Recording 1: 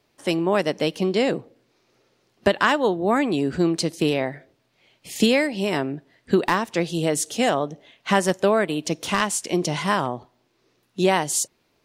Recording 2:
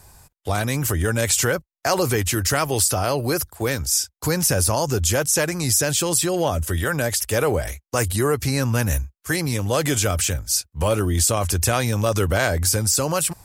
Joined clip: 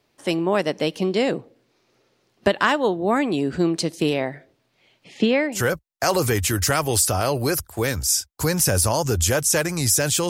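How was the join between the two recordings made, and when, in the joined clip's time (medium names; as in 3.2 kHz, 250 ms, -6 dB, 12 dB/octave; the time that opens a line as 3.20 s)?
recording 1
5.04–5.64 s: band-pass 150–2800 Hz
5.58 s: go over to recording 2 from 1.41 s, crossfade 0.12 s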